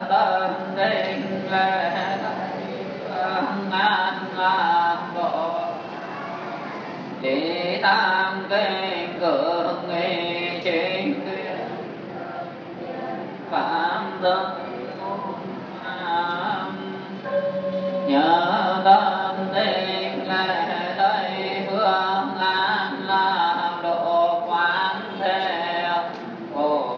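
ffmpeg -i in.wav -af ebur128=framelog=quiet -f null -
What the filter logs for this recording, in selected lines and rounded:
Integrated loudness:
  I:         -23.1 LUFS
  Threshold: -33.2 LUFS
Loudness range:
  LRA:         6.0 LU
  Threshold: -43.2 LUFS
  LRA low:   -26.8 LUFS
  LRA high:  -20.7 LUFS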